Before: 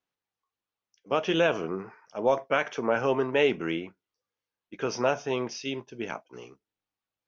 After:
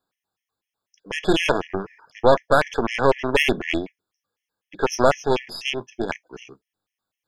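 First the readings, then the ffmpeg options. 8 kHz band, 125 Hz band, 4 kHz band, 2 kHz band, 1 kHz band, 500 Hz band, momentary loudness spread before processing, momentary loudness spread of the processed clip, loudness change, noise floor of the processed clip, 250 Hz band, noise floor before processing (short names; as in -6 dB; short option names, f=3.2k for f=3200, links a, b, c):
n/a, +7.5 dB, +8.0 dB, +7.0 dB, +8.0 dB, +5.5 dB, 13 LU, 12 LU, +6.0 dB, under -85 dBFS, +5.5 dB, under -85 dBFS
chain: -af "apsyclip=15dB,aeval=exprs='1.06*(cos(1*acos(clip(val(0)/1.06,-1,1)))-cos(1*PI/2))+0.299*(cos(2*acos(clip(val(0)/1.06,-1,1)))-cos(2*PI/2))+0.0335*(cos(4*acos(clip(val(0)/1.06,-1,1)))-cos(4*PI/2))+0.133*(cos(6*acos(clip(val(0)/1.06,-1,1)))-cos(6*PI/2))+0.00841*(cos(7*acos(clip(val(0)/1.06,-1,1)))-cos(7*PI/2))':c=same,afftfilt=real='re*gt(sin(2*PI*4*pts/sr)*(1-2*mod(floor(b*sr/1024/1700),2)),0)':imag='im*gt(sin(2*PI*4*pts/sr)*(1-2*mod(floor(b*sr/1024/1700),2)),0)':win_size=1024:overlap=0.75,volume=-6dB"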